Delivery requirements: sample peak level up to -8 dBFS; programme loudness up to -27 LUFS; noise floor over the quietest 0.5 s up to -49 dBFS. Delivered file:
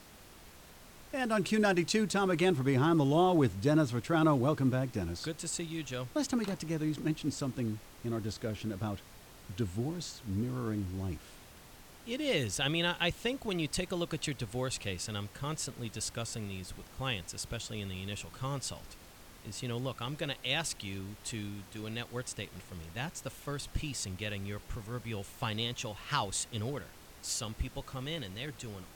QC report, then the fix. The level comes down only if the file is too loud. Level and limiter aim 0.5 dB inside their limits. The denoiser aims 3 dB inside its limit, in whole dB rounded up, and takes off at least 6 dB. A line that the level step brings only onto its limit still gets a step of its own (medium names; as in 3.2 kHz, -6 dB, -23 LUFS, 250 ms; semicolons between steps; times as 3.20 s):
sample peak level -15.0 dBFS: pass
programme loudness -34.5 LUFS: pass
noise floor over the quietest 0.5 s -54 dBFS: pass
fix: none needed